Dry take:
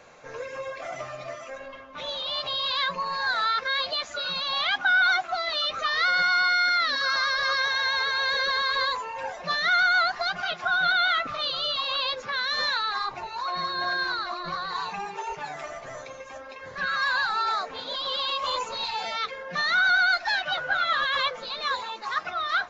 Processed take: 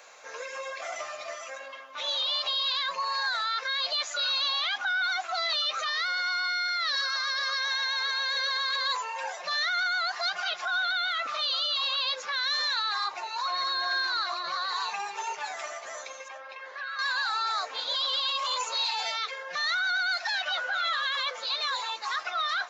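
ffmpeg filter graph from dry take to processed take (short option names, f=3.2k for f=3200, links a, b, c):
-filter_complex "[0:a]asettb=1/sr,asplit=3[a][b][c];[a]atrim=end=16.284[d];[b]atrim=start=16.28:end=16.99,asetpts=PTS-STARTPTS,afade=t=in:d=0.004:c=qsin,afade=t=out:st=0.706:d=0.004:c=qsin,acompressor=threshold=-36dB:ratio=3:attack=3.2:release=140:knee=1:detection=peak,highpass=340,lowpass=3.3k[e];[c]atrim=start=16.986[f];[d][e]acrossfade=d=0.004:c1=hsin:c2=qsin[g];[g][f]acrossfade=d=0.004:c1=qsin:c2=hsin,alimiter=limit=-23dB:level=0:latency=1:release=17,highpass=620,highshelf=f=4.5k:g=11"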